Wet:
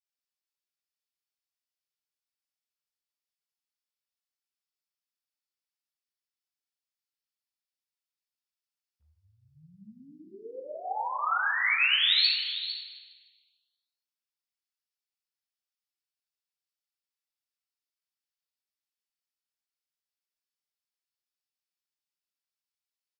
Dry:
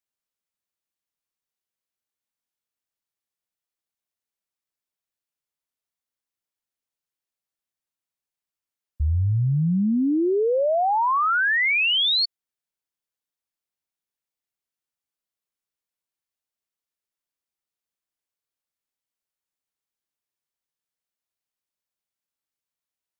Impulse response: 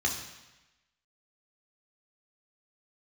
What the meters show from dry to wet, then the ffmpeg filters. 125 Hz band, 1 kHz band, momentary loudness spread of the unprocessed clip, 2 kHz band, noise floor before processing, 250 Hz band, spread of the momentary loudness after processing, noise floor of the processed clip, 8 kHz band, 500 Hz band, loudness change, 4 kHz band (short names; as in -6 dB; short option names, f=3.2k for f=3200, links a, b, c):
under -35 dB, -9.5 dB, 6 LU, -5.5 dB, under -85 dBFS, -30.0 dB, 21 LU, under -85 dBFS, n/a, -20.0 dB, -4.5 dB, -2.5 dB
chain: -filter_complex "[0:a]highpass=1.2k,aecho=1:1:452:0.266,asplit=2[a][b];[1:a]atrim=start_sample=2205,asetrate=32193,aresample=44100[c];[b][c]afir=irnorm=-1:irlink=0,volume=-7dB[d];[a][d]amix=inputs=2:normalize=0,volume=-6.5dB"